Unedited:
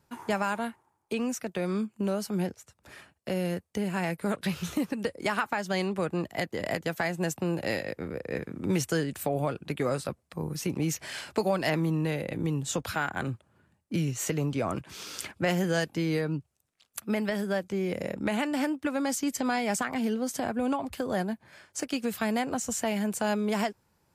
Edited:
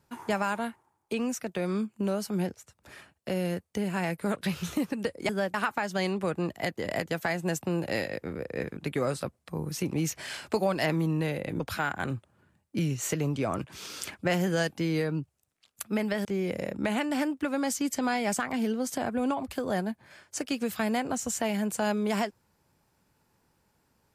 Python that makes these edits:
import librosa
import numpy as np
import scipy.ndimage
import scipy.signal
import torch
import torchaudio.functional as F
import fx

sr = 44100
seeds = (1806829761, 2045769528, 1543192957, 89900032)

y = fx.edit(x, sr, fx.cut(start_s=8.52, length_s=1.09),
    fx.cut(start_s=12.44, length_s=0.33),
    fx.move(start_s=17.42, length_s=0.25, to_s=5.29), tone=tone)